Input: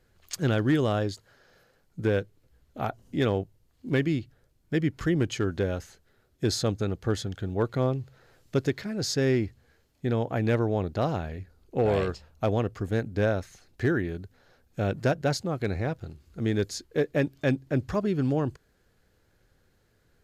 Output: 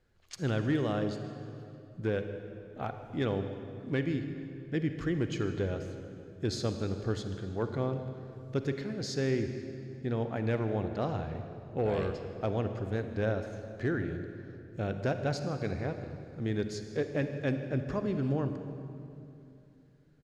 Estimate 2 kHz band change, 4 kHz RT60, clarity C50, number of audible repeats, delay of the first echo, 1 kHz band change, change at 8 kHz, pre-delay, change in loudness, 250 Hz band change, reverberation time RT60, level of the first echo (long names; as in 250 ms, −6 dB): −6.0 dB, 2.0 s, 7.5 dB, 1, 156 ms, −5.5 dB, −9.5 dB, 39 ms, −5.5 dB, −5.0 dB, 2.7 s, −19.5 dB